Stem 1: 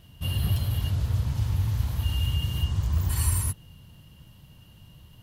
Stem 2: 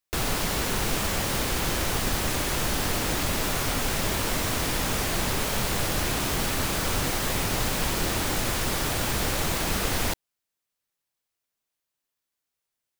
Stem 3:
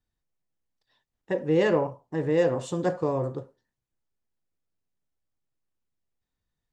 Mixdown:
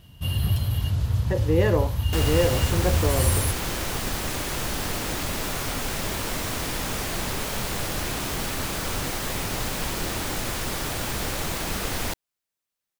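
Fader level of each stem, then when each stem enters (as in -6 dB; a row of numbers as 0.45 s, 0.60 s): +2.0 dB, -2.0 dB, 0.0 dB; 0.00 s, 2.00 s, 0.00 s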